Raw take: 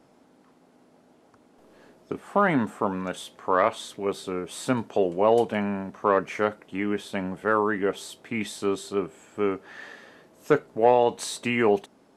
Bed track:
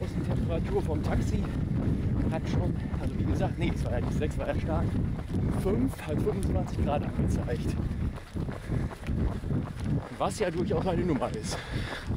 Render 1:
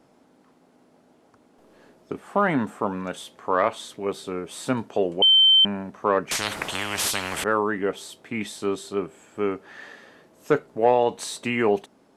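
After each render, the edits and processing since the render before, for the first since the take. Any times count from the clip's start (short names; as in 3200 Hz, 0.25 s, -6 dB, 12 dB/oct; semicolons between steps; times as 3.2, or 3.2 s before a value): 5.22–5.65 bleep 3100 Hz -12 dBFS; 6.31–7.44 spectral compressor 10:1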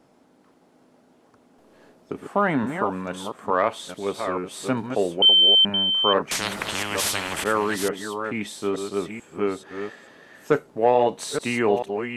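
reverse delay 0.438 s, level -7 dB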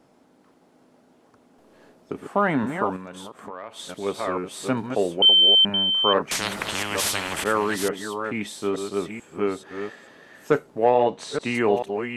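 2.96–3.79 compressor 4:1, threshold -35 dBFS; 10.89–11.55 air absorption 77 m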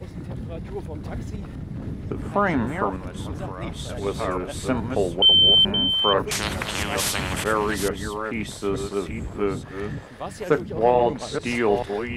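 add bed track -4 dB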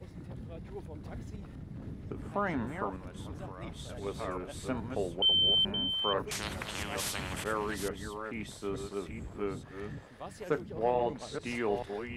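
gain -11 dB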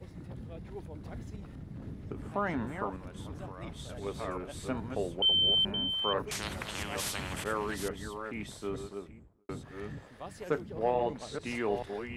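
8.62–9.49 studio fade out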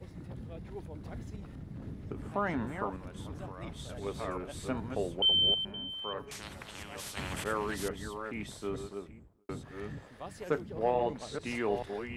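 5.54–7.17 resonator 140 Hz, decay 2 s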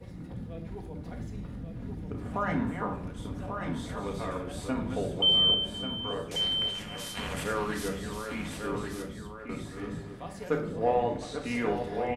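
echo 1.139 s -6.5 dB; shoebox room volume 630 m³, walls furnished, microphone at 1.8 m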